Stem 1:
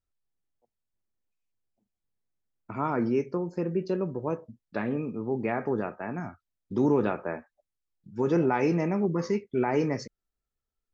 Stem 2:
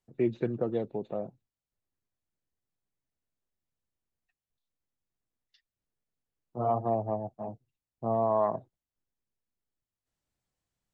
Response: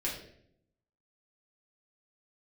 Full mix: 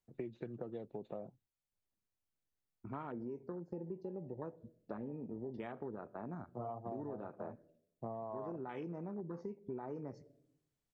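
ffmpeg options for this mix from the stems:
-filter_complex "[0:a]afwtdn=0.02,adelay=150,volume=-7dB,asplit=2[link_01][link_02];[link_02]volume=-23.5dB[link_03];[1:a]volume=-4.5dB[link_04];[2:a]atrim=start_sample=2205[link_05];[link_03][link_05]afir=irnorm=-1:irlink=0[link_06];[link_01][link_04][link_06]amix=inputs=3:normalize=0,acompressor=threshold=-40dB:ratio=10"

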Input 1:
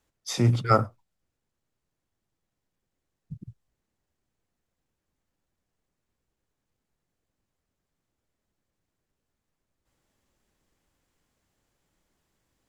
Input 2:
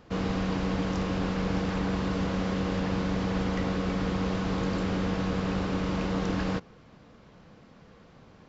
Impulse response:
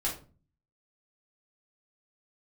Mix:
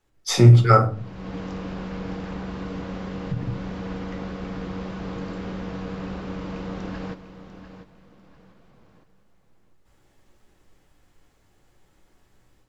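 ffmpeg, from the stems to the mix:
-filter_complex "[0:a]acompressor=threshold=-24dB:ratio=2,volume=-0.5dB,asplit=3[link_01][link_02][link_03];[link_02]volume=-4.5dB[link_04];[1:a]flanger=delay=5.2:depth=1.4:regen=-74:speed=1.6:shape=triangular,adelay=550,volume=-8dB,asplit=2[link_05][link_06];[link_06]volume=-11.5dB[link_07];[link_03]apad=whole_len=398379[link_08];[link_05][link_08]sidechaincompress=threshold=-40dB:ratio=8:attack=27:release=439[link_09];[2:a]atrim=start_sample=2205[link_10];[link_04][link_10]afir=irnorm=-1:irlink=0[link_11];[link_07]aecho=0:1:696|1392|2088|2784:1|0.24|0.0576|0.0138[link_12];[link_01][link_09][link_11][link_12]amix=inputs=4:normalize=0,highshelf=frequency=4000:gain=-6,dynaudnorm=framelen=100:gausssize=3:maxgain=8.5dB"

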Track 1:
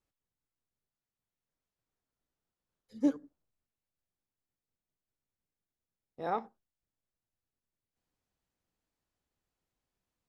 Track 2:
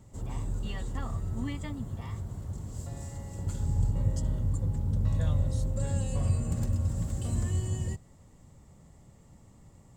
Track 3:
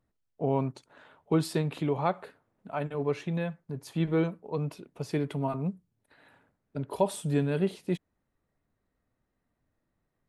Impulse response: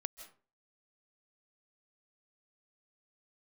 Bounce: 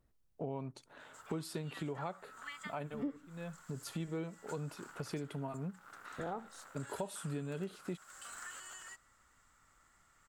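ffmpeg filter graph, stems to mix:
-filter_complex "[0:a]lowpass=1500,aemphasis=mode=reproduction:type=bsi,volume=1.5dB,asplit=2[link_01][link_02];[1:a]aeval=exprs='0.0531*(abs(mod(val(0)/0.0531+3,4)-2)-1)':channel_layout=same,highpass=frequency=1400:width_type=q:width=6.4,adelay=1000,volume=-4.5dB[link_03];[2:a]highshelf=frequency=4400:gain=5,volume=-1dB[link_04];[link_02]apad=whole_len=453514[link_05];[link_04][link_05]sidechaincompress=threshold=-46dB:ratio=8:attack=16:release=299[link_06];[link_01][link_03][link_06]amix=inputs=3:normalize=0,acompressor=threshold=-39dB:ratio=4"

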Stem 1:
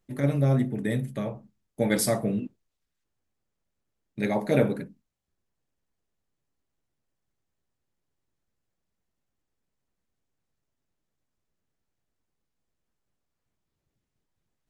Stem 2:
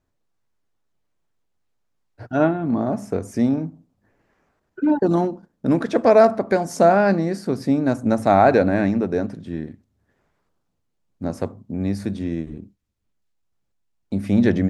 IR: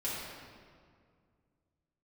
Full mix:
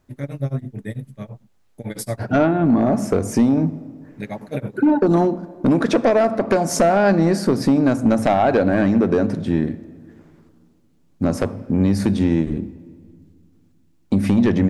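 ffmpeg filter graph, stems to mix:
-filter_complex "[0:a]equalizer=frequency=110:width=3.9:gain=11.5,tremolo=f=9:d=0.97,volume=-1dB[link_01];[1:a]acompressor=threshold=-22dB:ratio=6,aeval=exprs='0.355*sin(PI/2*2.24*val(0)/0.355)':channel_layout=same,volume=-0.5dB,asplit=2[link_02][link_03];[link_03]volume=-20dB[link_04];[2:a]atrim=start_sample=2205[link_05];[link_04][link_05]afir=irnorm=-1:irlink=0[link_06];[link_01][link_02][link_06]amix=inputs=3:normalize=0"

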